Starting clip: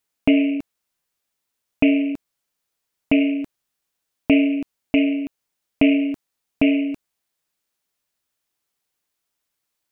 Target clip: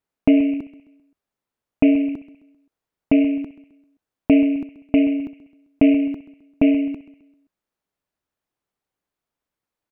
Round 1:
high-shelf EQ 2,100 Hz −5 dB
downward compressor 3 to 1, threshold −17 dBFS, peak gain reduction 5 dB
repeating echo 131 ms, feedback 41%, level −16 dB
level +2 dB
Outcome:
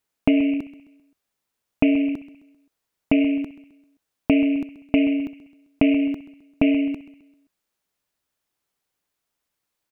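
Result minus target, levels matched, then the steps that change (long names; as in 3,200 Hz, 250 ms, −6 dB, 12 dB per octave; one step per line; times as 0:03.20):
4,000 Hz band +6.0 dB; downward compressor: peak gain reduction +5 dB
change: high-shelf EQ 2,100 Hz −15.5 dB
remove: downward compressor 3 to 1, threshold −17 dBFS, peak gain reduction 5 dB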